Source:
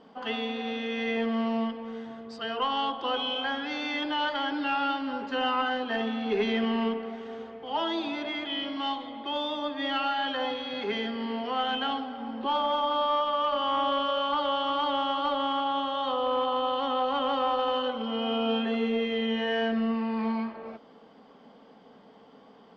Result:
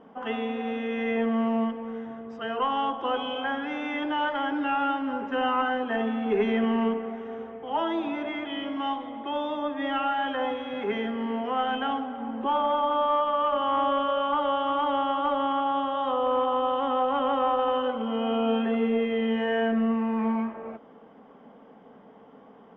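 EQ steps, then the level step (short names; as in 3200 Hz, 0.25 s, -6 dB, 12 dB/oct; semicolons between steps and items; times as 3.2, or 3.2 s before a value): running mean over 10 samples; +3.0 dB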